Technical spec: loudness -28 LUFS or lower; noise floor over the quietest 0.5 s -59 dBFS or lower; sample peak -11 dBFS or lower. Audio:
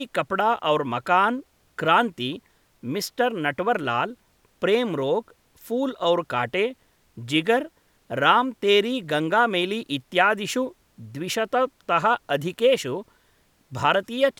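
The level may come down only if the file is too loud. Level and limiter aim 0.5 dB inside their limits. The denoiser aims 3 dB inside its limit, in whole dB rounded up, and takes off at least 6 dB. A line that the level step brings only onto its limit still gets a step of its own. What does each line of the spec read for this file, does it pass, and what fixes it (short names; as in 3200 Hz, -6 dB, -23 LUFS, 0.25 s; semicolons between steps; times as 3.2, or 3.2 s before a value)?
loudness -23.5 LUFS: fail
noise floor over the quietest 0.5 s -62 dBFS: OK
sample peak -4.0 dBFS: fail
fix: gain -5 dB; limiter -11.5 dBFS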